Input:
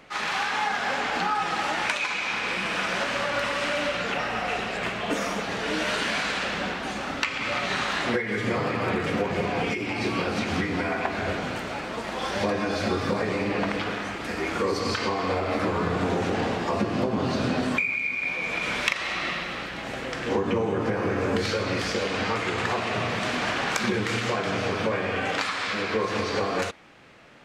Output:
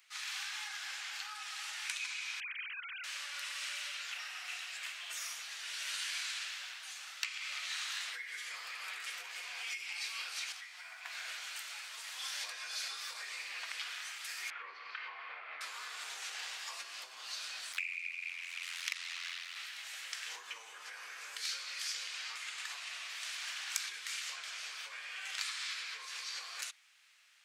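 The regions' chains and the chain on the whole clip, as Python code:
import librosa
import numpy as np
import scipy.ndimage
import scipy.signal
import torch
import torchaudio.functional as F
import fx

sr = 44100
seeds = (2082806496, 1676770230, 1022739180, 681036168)

y = fx.chain(x, sr, fx.sine_speech(),
    fx.highpass(hz=1100.0, slope=24), at=(2.4, 3.04))
y = fx.chain(y, sr, fx.ladder_highpass(hz=560.0, resonance_pct=35),
    fx.quant_float(bits=8), at=(10.52, 11.06))
y = fx.chain(y, sr, fx.lowpass(hz=2400.0, slope=24),
    fx.low_shelf(hz=140.0, db=9.5), at=(14.5, 15.61))
y = fx.chain(y, sr, fx.ring_mod(carrier_hz=43.0),
    fx.doppler_dist(depth_ms=0.78), at=(17.72, 19.56))
y = scipy.signal.sosfilt(scipy.signal.butter(2, 1300.0, 'highpass', fs=sr, output='sos'), y)
y = np.diff(y, prepend=0.0)
y = fx.rider(y, sr, range_db=3, speed_s=2.0)
y = y * librosa.db_to_amplitude(-1.0)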